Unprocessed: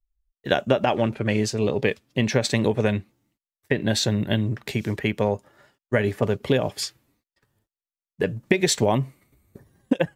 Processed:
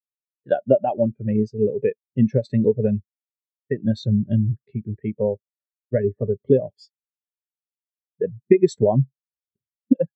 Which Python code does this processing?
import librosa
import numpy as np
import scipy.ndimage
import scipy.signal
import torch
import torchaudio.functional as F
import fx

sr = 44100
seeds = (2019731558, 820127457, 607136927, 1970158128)

y = fx.high_shelf(x, sr, hz=2900.0, db=-3.5, at=(4.2, 5.15))
y = fx.spectral_expand(y, sr, expansion=2.5)
y = y * librosa.db_to_amplitude(1.5)